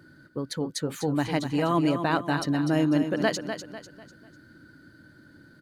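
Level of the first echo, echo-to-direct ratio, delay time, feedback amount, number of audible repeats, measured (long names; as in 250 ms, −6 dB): −8.5 dB, −8.0 dB, 248 ms, 38%, 4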